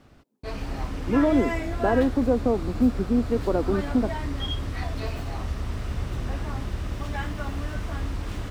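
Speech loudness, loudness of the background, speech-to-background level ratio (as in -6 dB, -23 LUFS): -24.5 LUFS, -31.5 LUFS, 7.0 dB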